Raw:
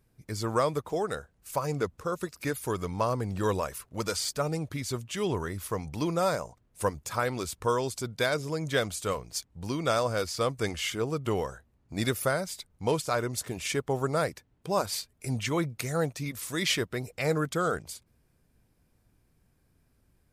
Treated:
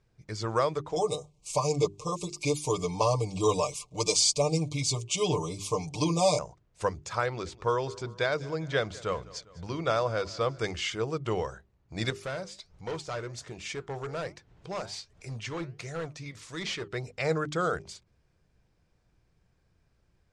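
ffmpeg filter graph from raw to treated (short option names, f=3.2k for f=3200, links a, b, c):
-filter_complex "[0:a]asettb=1/sr,asplit=3[a][b][c];[a]atrim=end=0.964[d];[b]atrim=start=0.96:end=6.39,asetpts=PTS-STARTPTS,afade=t=in:d=0.004:c=qsin,afade=t=out:st=5.426:d=0.004:c=qsin,asuperstop=centerf=1600:order=20:qfactor=1.7,equalizer=f=8.6k:t=o:w=1.5:g=12.5,aecho=1:1:6.7:0.96,atrim=end_sample=239463[e];[c]atrim=start=6.386[f];[d][e]acrossfade=d=0.004:c1=hsin:c2=qsin[g];[g][f]acrossfade=d=0.004:c1=qsin:c2=hsin,asettb=1/sr,asplit=3[h][i][j];[h]atrim=end=7.264[k];[i]atrim=start=7.26:end=10.59,asetpts=PTS-STARTPTS,afade=t=in:d=0.004:c=qsin,afade=t=out:st=3.326:d=0.004:c=qsin,lowpass=f=3.5k:p=1,aecho=1:1:201|402|603|804:0.0891|0.0508|0.029|0.0165,atrim=end_sample=146853[l];[j]atrim=start=10.586[m];[k][l]acrossfade=d=0.004:c1=hsin:c2=qsin[n];[n][m]acrossfade=d=0.004:c1=qsin:c2=hsin,asettb=1/sr,asplit=3[o][p][q];[o]atrim=end=12.104[r];[p]atrim=start=12.1:end=16.88,asetpts=PTS-STARTPTS,afade=t=in:d=0.004:c=qsin,afade=t=out:st=4.776:d=0.004:c=qsin,acompressor=mode=upward:threshold=-35dB:ratio=2.5:attack=3.2:release=140:knee=2.83:detection=peak,flanger=delay=3.4:depth=6.8:regen=84:speed=1.3:shape=triangular,asoftclip=type=hard:threshold=-29.5dB[s];[q]atrim=start=16.876[t];[r][s]acrossfade=d=0.004:c1=hsin:c2=qsin[u];[u][t]acrossfade=d=0.004:c1=qsin:c2=hsin,lowpass=f=6.9k:w=0.5412,lowpass=f=6.9k:w=1.3066,equalizer=f=250:t=o:w=0.28:g=-10.5,bandreject=f=50:t=h:w=6,bandreject=f=100:t=h:w=6,bandreject=f=150:t=h:w=6,bandreject=f=200:t=h:w=6,bandreject=f=250:t=h:w=6,bandreject=f=300:t=h:w=6,bandreject=f=350:t=h:w=6,bandreject=f=400:t=h:w=6"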